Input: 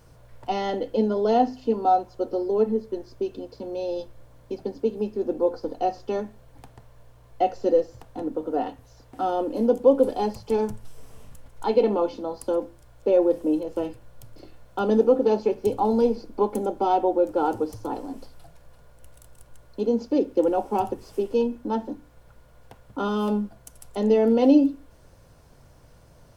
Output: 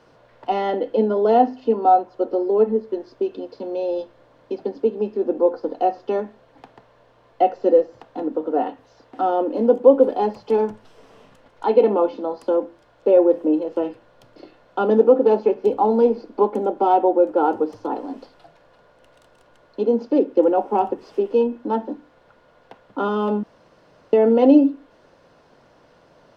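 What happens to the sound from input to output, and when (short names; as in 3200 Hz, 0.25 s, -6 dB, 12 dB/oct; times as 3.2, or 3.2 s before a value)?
23.43–24.13 room tone
whole clip: three-band isolator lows -22 dB, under 200 Hz, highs -24 dB, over 4800 Hz; notch 2300 Hz, Q 26; dynamic EQ 4600 Hz, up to -7 dB, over -49 dBFS, Q 0.84; gain +5.5 dB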